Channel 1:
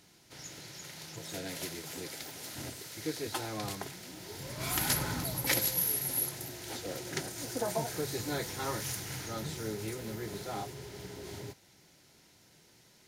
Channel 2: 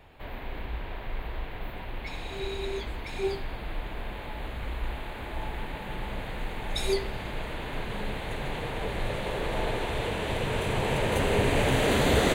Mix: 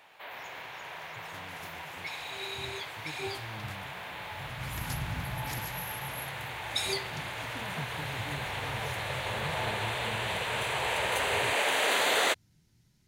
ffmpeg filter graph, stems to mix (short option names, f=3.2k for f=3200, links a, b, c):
-filter_complex "[0:a]asubboost=boost=10.5:cutoff=150,volume=-12dB[a];[1:a]highpass=800,volume=2.5dB[b];[a][b]amix=inputs=2:normalize=0"